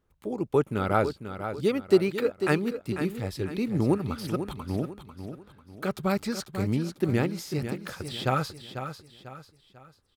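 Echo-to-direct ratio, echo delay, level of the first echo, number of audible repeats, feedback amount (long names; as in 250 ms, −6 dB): −9.0 dB, 495 ms, −9.5 dB, 4, 38%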